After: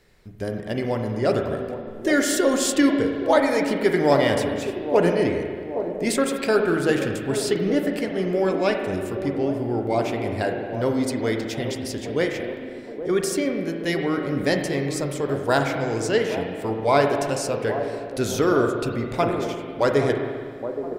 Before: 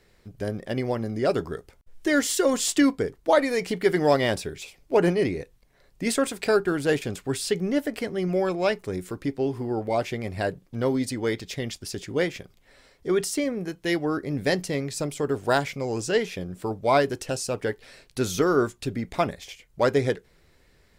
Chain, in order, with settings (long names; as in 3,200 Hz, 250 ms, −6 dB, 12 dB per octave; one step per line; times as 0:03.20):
delay with a band-pass on its return 821 ms, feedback 54%, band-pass 430 Hz, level −9 dB
spring reverb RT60 1.9 s, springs 36/42 ms, chirp 65 ms, DRR 3.5 dB
level +1 dB